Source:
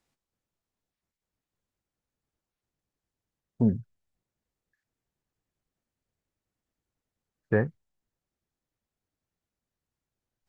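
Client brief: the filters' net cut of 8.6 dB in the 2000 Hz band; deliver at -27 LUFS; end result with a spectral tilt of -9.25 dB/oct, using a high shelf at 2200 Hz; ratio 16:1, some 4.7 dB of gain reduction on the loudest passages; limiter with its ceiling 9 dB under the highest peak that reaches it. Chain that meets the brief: bell 2000 Hz -8.5 dB; high shelf 2200 Hz -4.5 dB; compressor 16:1, threshold -22 dBFS; gain +11 dB; limiter -12.5 dBFS

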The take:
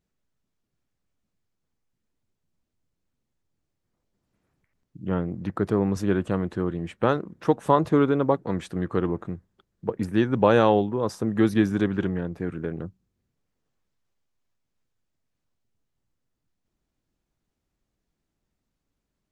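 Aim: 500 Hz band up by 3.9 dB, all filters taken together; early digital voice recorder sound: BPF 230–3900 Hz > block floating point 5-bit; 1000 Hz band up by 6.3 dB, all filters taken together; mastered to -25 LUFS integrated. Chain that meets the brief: BPF 230–3900 Hz; bell 500 Hz +3.5 dB; bell 1000 Hz +6.5 dB; block floating point 5-bit; gain -3 dB

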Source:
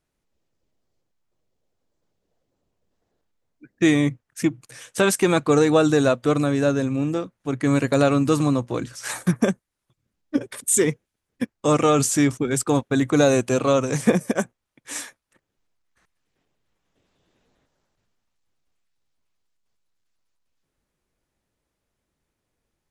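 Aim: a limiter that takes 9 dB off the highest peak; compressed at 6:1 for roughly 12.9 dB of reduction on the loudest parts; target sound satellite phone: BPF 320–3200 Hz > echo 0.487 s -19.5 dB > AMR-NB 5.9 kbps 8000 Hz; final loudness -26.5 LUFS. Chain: compressor 6:1, threshold -27 dBFS; limiter -23.5 dBFS; BPF 320–3200 Hz; echo 0.487 s -19.5 dB; gain +12 dB; AMR-NB 5.9 kbps 8000 Hz

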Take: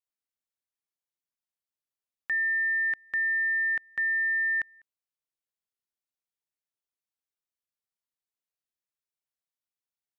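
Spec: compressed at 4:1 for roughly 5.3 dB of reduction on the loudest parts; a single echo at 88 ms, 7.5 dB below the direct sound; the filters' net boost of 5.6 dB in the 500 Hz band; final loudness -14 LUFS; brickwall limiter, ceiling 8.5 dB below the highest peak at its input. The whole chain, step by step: bell 500 Hz +7 dB; compressor 4:1, threshold -31 dBFS; limiter -30.5 dBFS; echo 88 ms -7.5 dB; gain +20.5 dB

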